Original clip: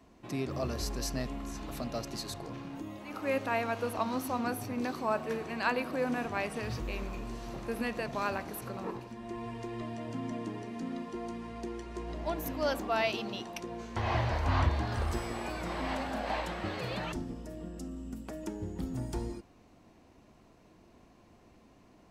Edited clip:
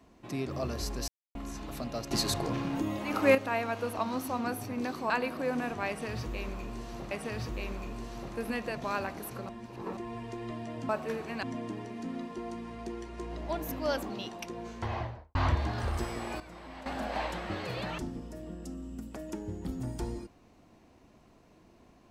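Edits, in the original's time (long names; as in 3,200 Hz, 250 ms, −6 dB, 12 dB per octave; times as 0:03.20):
0:01.08–0:01.35: silence
0:02.11–0:03.35: clip gain +9.5 dB
0:05.10–0:05.64: move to 0:10.20
0:06.42–0:07.65: repeat, 2 plays
0:08.80–0:09.28: reverse
0:12.87–0:13.24: remove
0:13.86–0:14.49: fade out and dull
0:15.54–0:16.00: clip gain −11.5 dB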